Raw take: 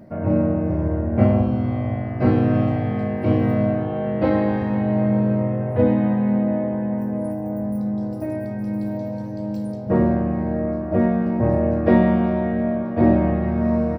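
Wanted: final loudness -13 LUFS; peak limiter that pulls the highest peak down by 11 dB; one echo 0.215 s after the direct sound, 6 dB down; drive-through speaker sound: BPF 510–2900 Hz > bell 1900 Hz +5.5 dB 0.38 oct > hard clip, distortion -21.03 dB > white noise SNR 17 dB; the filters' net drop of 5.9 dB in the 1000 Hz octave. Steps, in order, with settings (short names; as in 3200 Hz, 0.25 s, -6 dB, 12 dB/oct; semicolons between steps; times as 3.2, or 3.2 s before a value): bell 1000 Hz -8 dB; limiter -15.5 dBFS; BPF 510–2900 Hz; bell 1900 Hz +5.5 dB 0.38 oct; echo 0.215 s -6 dB; hard clip -25 dBFS; white noise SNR 17 dB; gain +19.5 dB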